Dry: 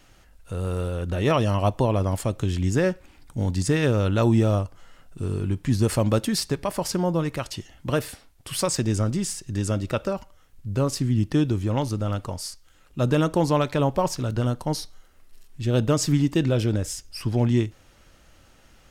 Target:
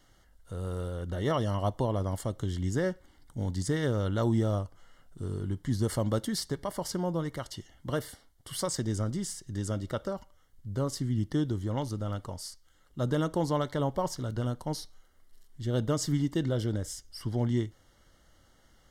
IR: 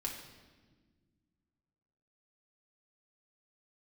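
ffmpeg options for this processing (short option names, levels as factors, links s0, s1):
-af "asuperstop=centerf=2500:order=12:qfactor=4.5,volume=0.422"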